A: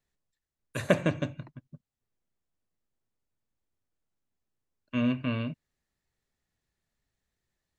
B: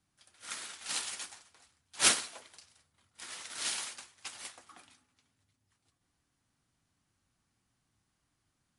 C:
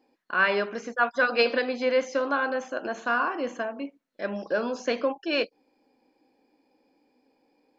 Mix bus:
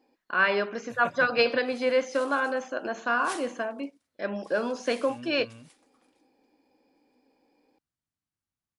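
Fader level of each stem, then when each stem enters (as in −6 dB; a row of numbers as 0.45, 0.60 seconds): −16.5, −15.5, −0.5 decibels; 0.15, 1.25, 0.00 seconds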